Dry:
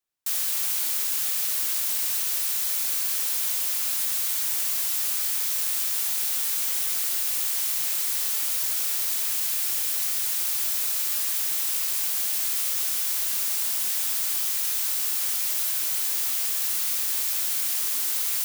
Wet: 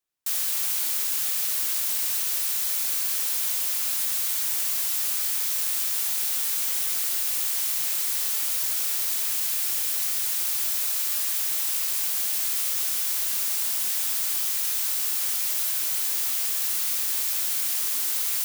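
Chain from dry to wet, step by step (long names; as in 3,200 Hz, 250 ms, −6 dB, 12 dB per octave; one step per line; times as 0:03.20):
0:10.78–0:11.82: high-pass filter 410 Hz 24 dB per octave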